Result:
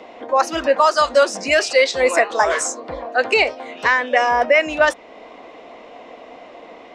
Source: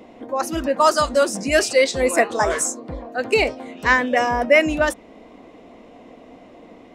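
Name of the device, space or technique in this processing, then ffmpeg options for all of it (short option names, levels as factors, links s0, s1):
DJ mixer with the lows and highs turned down: -filter_complex "[0:a]acrossover=split=450 6600:gain=0.158 1 0.1[s0][s1][s2];[s0][s1][s2]amix=inputs=3:normalize=0,alimiter=limit=0.211:level=0:latency=1:release=435,volume=2.82"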